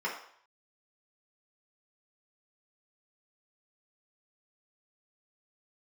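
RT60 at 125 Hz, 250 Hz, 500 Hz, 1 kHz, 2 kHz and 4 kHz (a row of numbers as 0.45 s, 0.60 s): 0.40 s, 0.45 s, 0.60 s, 0.65 s, 0.60 s, 0.60 s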